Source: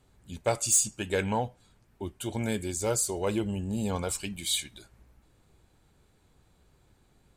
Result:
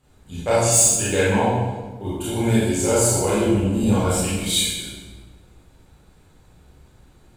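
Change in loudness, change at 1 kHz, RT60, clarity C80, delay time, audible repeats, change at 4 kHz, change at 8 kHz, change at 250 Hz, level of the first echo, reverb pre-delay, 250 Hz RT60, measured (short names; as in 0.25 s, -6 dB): +10.0 dB, +10.5 dB, 1.3 s, 1.0 dB, none, none, +9.5 dB, +9.0 dB, +12.0 dB, none, 23 ms, 1.7 s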